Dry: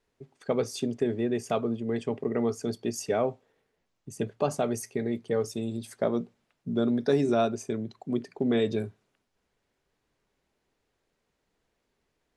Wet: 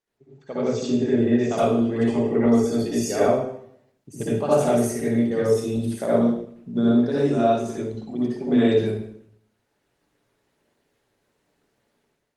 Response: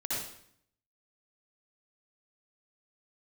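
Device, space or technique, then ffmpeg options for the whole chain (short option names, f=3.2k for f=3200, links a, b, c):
far-field microphone of a smart speaker: -filter_complex "[1:a]atrim=start_sample=2205[a];[0:a][a]afir=irnorm=-1:irlink=0,highpass=f=100:p=1,dynaudnorm=f=480:g=3:m=10dB,volume=-5dB" -ar 48000 -c:a libopus -b:a 24k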